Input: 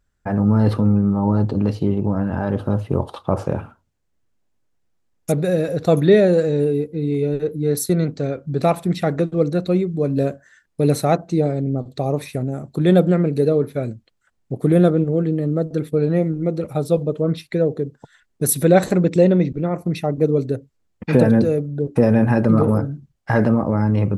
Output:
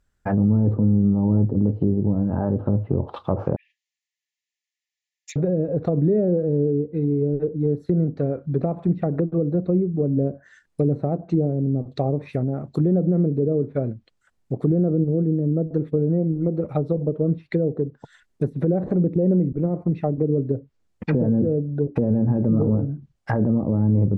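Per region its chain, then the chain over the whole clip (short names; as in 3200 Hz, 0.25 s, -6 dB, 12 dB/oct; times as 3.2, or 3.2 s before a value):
3.56–5.36 brick-wall FIR band-pass 1700–7500 Hz + hard clip -30 dBFS
whole clip: limiter -10 dBFS; treble ducked by the level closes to 440 Hz, closed at -16.5 dBFS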